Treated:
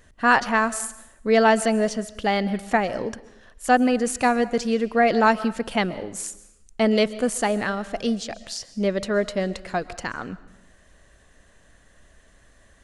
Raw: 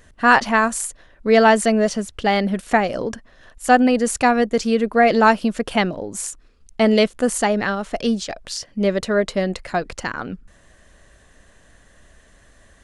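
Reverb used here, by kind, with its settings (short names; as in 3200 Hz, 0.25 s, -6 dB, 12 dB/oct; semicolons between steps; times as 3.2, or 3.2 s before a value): digital reverb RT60 0.79 s, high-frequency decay 0.95×, pre-delay 90 ms, DRR 16.5 dB; gain -4 dB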